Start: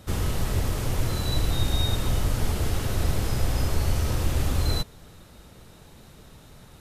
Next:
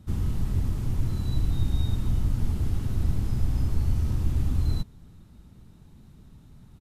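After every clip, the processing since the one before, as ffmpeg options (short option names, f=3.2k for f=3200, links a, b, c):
-af "firequalizer=gain_entry='entry(230,0);entry(510,-16);entry(890,-11);entry(1600,-14)':delay=0.05:min_phase=1"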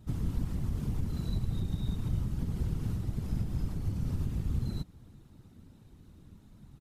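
-af "acompressor=threshold=-23dB:ratio=6,afftfilt=real='hypot(re,im)*cos(2*PI*random(0))':imag='hypot(re,im)*sin(2*PI*random(1))':win_size=512:overlap=0.75,volume=2.5dB"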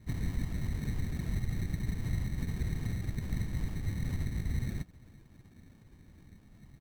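-af "acrusher=samples=22:mix=1:aa=0.000001,volume=-1.5dB"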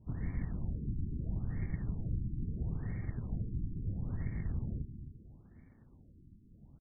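-af "aecho=1:1:264|528|792|1056:0.355|0.138|0.054|0.021,afftfilt=real='re*lt(b*sr/1024,370*pow(2400/370,0.5+0.5*sin(2*PI*0.75*pts/sr)))':imag='im*lt(b*sr/1024,370*pow(2400/370,0.5+0.5*sin(2*PI*0.75*pts/sr)))':win_size=1024:overlap=0.75,volume=-3.5dB"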